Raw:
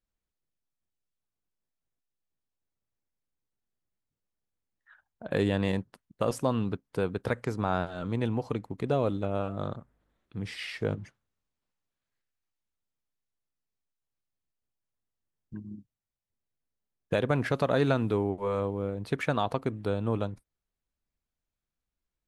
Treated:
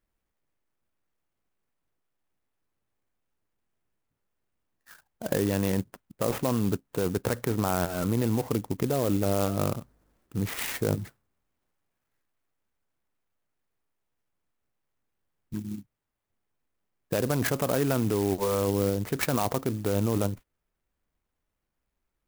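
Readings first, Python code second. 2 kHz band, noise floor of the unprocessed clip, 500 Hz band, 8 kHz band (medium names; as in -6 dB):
+0.5 dB, under -85 dBFS, +1.5 dB, +15.0 dB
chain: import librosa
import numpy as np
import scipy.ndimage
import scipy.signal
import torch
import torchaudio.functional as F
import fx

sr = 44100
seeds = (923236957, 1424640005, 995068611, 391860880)

p1 = fx.over_compress(x, sr, threshold_db=-31.0, ratio=-0.5)
p2 = x + (p1 * 10.0 ** (2.0 / 20.0))
p3 = fx.sample_hold(p2, sr, seeds[0], rate_hz=6200.0, jitter_pct=0)
p4 = fx.peak_eq(p3, sr, hz=330.0, db=2.0, octaves=0.77)
p5 = fx.clock_jitter(p4, sr, seeds[1], jitter_ms=0.061)
y = p5 * 10.0 ** (-3.0 / 20.0)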